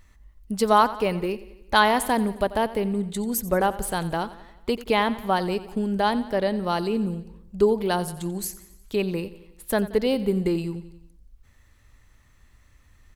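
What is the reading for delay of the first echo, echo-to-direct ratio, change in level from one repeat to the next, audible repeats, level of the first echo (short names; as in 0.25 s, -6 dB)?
89 ms, -15.0 dB, -5.0 dB, 4, -16.5 dB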